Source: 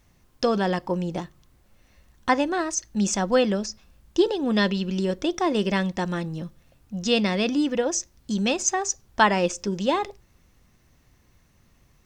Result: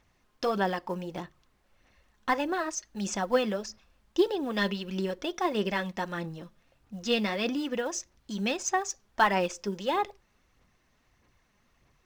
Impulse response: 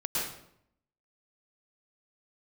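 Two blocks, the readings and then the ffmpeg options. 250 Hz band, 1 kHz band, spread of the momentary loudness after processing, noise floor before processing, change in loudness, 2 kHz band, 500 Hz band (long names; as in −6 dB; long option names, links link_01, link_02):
−8.0 dB, −3.5 dB, 11 LU, −61 dBFS, −6.0 dB, −4.0 dB, −5.5 dB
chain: -filter_complex "[0:a]asplit=2[link_01][link_02];[link_02]highpass=frequency=720:poles=1,volume=9dB,asoftclip=type=tanh:threshold=-5dB[link_03];[link_01][link_03]amix=inputs=2:normalize=0,lowpass=frequency=2900:poles=1,volume=-6dB,acrusher=bits=8:mode=log:mix=0:aa=0.000001,aphaser=in_gain=1:out_gain=1:delay=4.9:decay=0.39:speed=1.6:type=sinusoidal,volume=-7dB"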